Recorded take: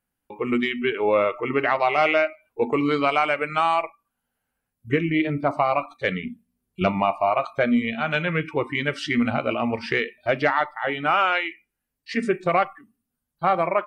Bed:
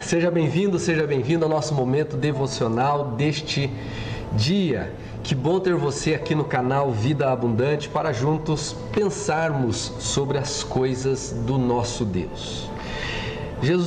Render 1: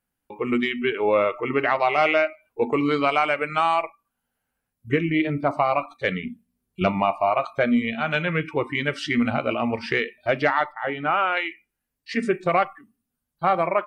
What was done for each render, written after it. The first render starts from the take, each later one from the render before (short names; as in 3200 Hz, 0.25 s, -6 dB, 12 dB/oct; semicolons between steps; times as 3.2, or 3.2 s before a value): 10.72–11.37 air absorption 300 m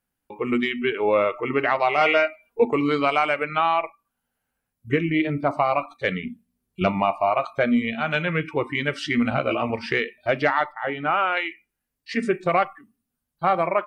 2–2.65 comb 4.3 ms, depth 79%; 3.43–3.84 brick-wall FIR low-pass 4200 Hz; 9.3–9.7 doubler 15 ms -4.5 dB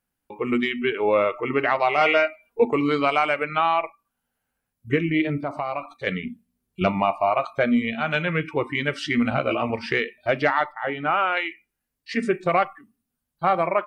5.42–6.07 compressor 2:1, threshold -28 dBFS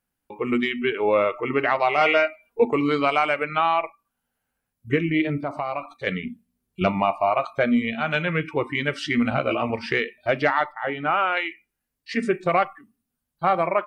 nothing audible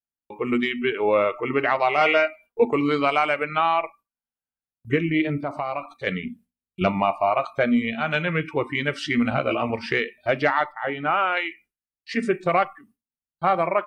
gate with hold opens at -48 dBFS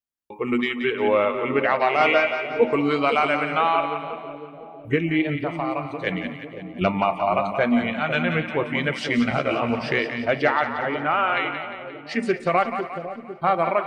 on a send: split-band echo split 620 Hz, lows 0.502 s, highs 0.176 s, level -8 dB; on the sum: warbling echo 0.252 s, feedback 43%, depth 126 cents, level -20.5 dB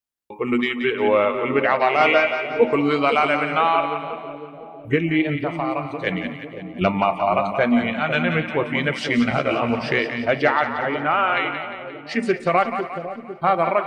gain +2 dB